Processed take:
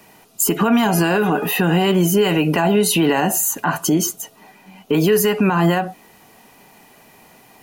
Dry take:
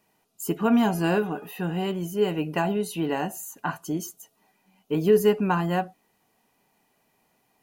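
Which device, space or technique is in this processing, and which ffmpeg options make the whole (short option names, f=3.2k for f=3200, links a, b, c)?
mastering chain: -filter_complex "[0:a]asettb=1/sr,asplit=3[a][b][c];[a]atrim=end=3.944[d];[b]atrim=start=3.94:end=4.94,asetpts=PTS-STARTPTS,afade=t=in:d=0.004:c=qsin,afade=t=out:st=0.996:d=0.004:c=qsin,highshelf=f=5.1k:g=-5[e];[c]atrim=start=4.936[f];[d][e]acrossfade=d=0.004:c1=hsin:c2=qsin[g];[g][f]acrossfade=d=0.004:c1=qsin:c2=hsin,equalizer=f=2k:t=o:w=0.77:g=1.5,acrossover=split=160|850[h][i][j];[h]acompressor=threshold=-46dB:ratio=4[k];[i]acompressor=threshold=-29dB:ratio=4[l];[j]acompressor=threshold=-31dB:ratio=4[m];[k][l][m]amix=inputs=3:normalize=0,acompressor=threshold=-31dB:ratio=2,alimiter=level_in=26.5dB:limit=-1dB:release=50:level=0:latency=1,volume=-6.5dB"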